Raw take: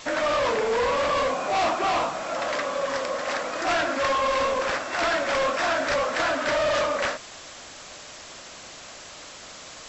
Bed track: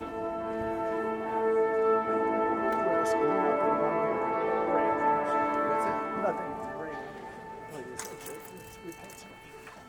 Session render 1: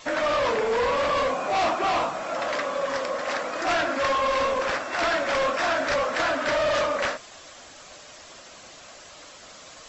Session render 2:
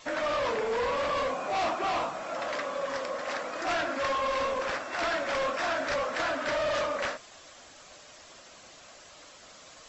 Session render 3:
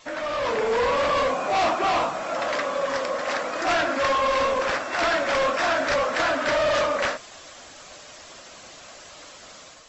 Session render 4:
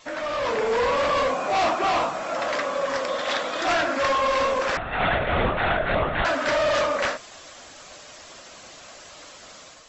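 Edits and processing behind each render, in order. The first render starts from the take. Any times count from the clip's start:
denoiser 6 dB, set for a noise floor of -43 dBFS
gain -5.5 dB
AGC gain up to 7 dB
3.08–3.67 bell 3500 Hz +12 dB 0.36 oct; 4.77–6.25 LPC vocoder at 8 kHz whisper

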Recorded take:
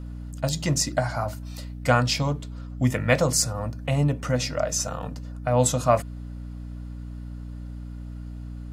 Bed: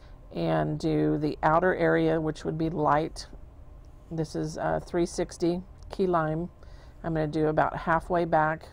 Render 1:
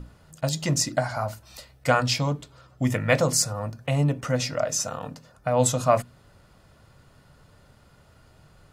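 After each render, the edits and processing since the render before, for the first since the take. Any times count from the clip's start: notches 60/120/180/240/300 Hz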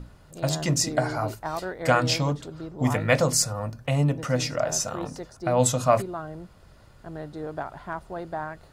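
add bed -9 dB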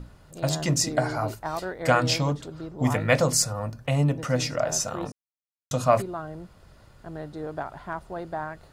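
5.12–5.71 mute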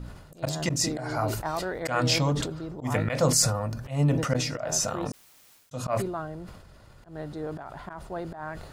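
auto swell 0.156 s; sustainer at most 53 dB/s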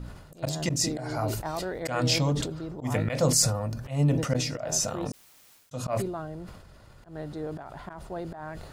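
dynamic EQ 1300 Hz, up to -5 dB, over -43 dBFS, Q 0.97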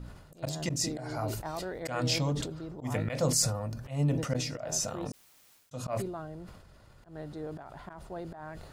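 gain -4.5 dB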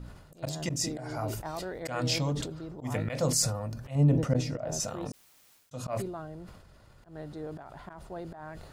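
0.62–1.45 notch 4200 Hz; 3.95–4.8 tilt shelf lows +5.5 dB, about 1100 Hz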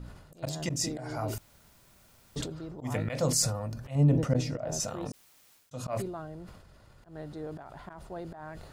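1.38–2.36 room tone

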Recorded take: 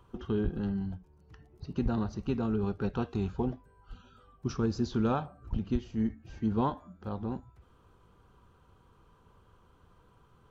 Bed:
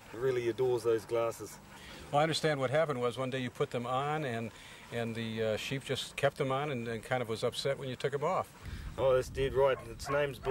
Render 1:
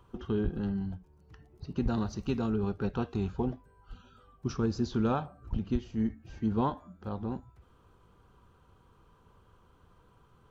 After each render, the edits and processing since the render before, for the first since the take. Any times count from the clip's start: 1.88–2.5 high shelf 3700 Hz +9.5 dB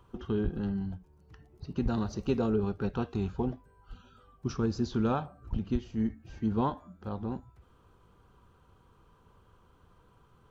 2.09–2.6 bell 500 Hz +7.5 dB 0.95 oct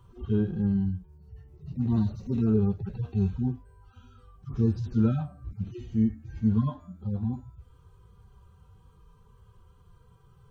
median-filter separation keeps harmonic; tone controls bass +10 dB, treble +6 dB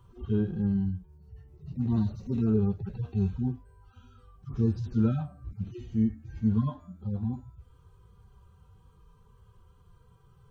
gain -1.5 dB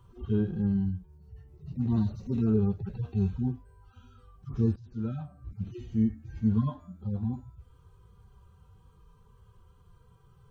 4.76–5.68 fade in, from -19 dB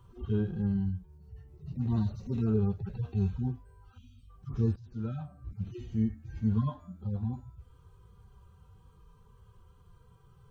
dynamic EQ 270 Hz, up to -5 dB, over -41 dBFS, Q 1.2; 3.98–4.3 spectral gain 340–2000 Hz -27 dB

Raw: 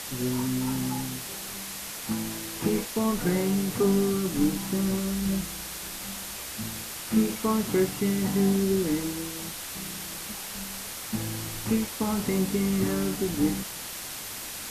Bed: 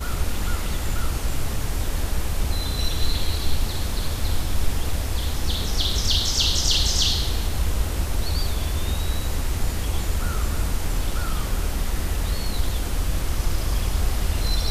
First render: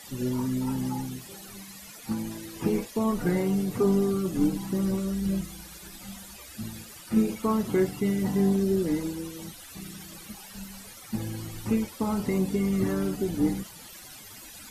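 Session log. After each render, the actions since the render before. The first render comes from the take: denoiser 15 dB, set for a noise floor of -38 dBFS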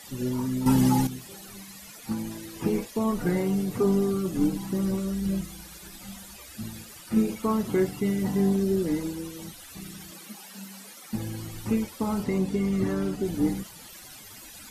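0.66–1.07 gain +9.5 dB; 10.11–11.13 steep high-pass 170 Hz; 12.24–13.25 high shelf 11000 Hz -11.5 dB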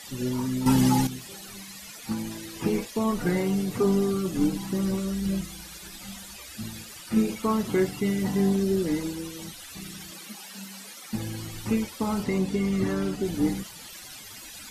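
LPF 3200 Hz 6 dB/oct; high shelf 2300 Hz +11.5 dB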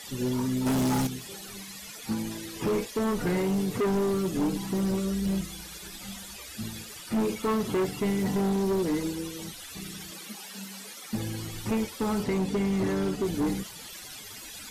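small resonant body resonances 430/3400 Hz, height 6 dB; overloaded stage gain 23 dB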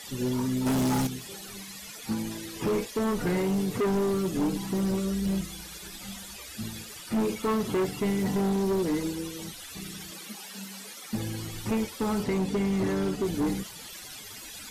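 nothing audible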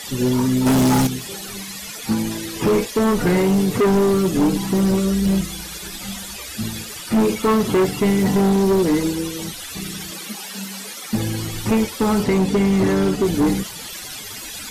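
gain +10 dB

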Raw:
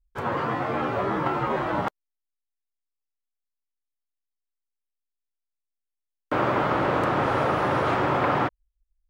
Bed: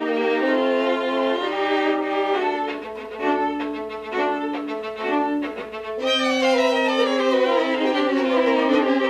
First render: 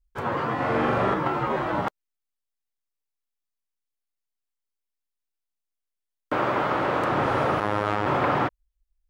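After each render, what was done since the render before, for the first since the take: 0.54–1.14 flutter echo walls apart 7.2 m, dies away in 1.1 s; 6.34–7.1 low shelf 240 Hz -6 dB; 7.6–8.06 robotiser 104 Hz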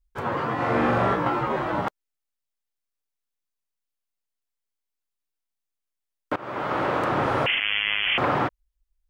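0.56–1.41 doubler 17 ms -5 dB; 6.36–6.8 fade in, from -22.5 dB; 7.46–8.18 inverted band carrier 3300 Hz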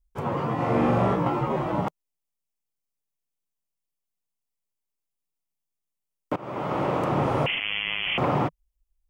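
fifteen-band EQ 160 Hz +7 dB, 1600 Hz -10 dB, 4000 Hz -6 dB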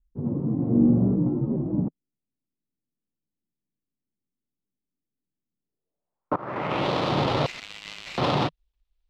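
switching dead time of 0.15 ms; low-pass sweep 260 Hz -> 3800 Hz, 5.58–6.9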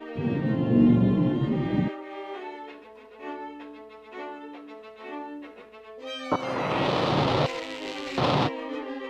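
add bed -15.5 dB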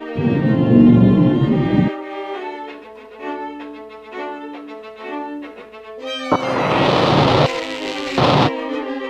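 gain +10 dB; limiter -1 dBFS, peak gain reduction 2.5 dB

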